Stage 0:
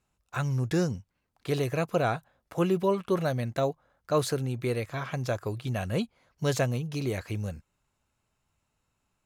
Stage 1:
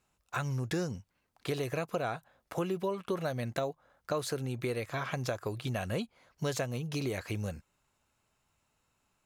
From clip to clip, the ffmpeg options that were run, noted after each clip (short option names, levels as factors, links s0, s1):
-af "lowshelf=f=220:g=-6,acompressor=threshold=0.02:ratio=4,volume=1.41"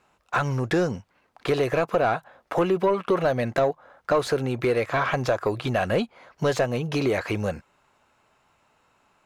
-filter_complex "[0:a]asplit=2[s0][s1];[s1]highpass=f=720:p=1,volume=7.08,asoftclip=type=tanh:threshold=0.141[s2];[s0][s2]amix=inputs=2:normalize=0,lowpass=f=1100:p=1,volume=0.501,volume=2.51"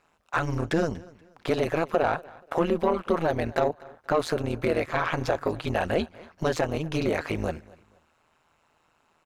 -af "tremolo=f=160:d=0.919,aecho=1:1:239|478:0.075|0.0232,volume=1.19"